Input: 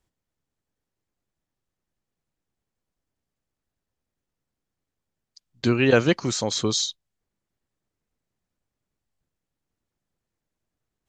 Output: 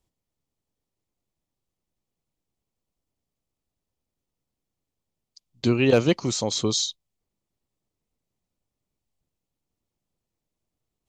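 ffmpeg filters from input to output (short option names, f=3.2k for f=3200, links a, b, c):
-af "asoftclip=type=hard:threshold=-7.5dB,equalizer=f=1.6k:w=2.4:g=-9.5"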